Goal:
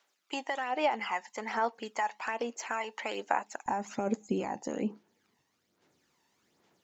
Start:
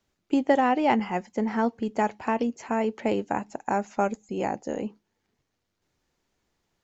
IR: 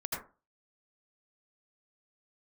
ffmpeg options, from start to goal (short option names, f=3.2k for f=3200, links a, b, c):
-af "asetnsamples=n=441:p=0,asendcmd='3.66 highpass f 200',highpass=840,alimiter=limit=-21.5dB:level=0:latency=1:release=11,acompressor=threshold=-33dB:ratio=6,aphaser=in_gain=1:out_gain=1:delay=1.1:decay=0.51:speed=1.2:type=sinusoidal,volume=3.5dB"